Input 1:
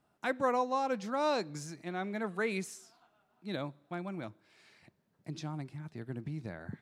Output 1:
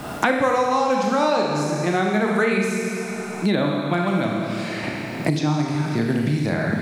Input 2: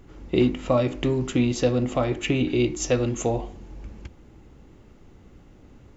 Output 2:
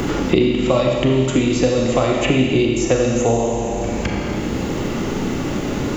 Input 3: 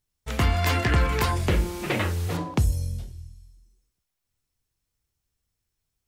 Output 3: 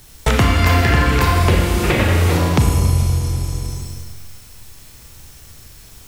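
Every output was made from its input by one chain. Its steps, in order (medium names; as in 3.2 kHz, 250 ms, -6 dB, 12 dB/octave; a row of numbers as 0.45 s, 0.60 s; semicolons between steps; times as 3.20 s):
Schroeder reverb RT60 1.4 s, combs from 27 ms, DRR -0.5 dB; three bands compressed up and down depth 100%; peak normalisation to -1.5 dBFS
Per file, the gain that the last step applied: +11.5 dB, +4.5 dB, +5.5 dB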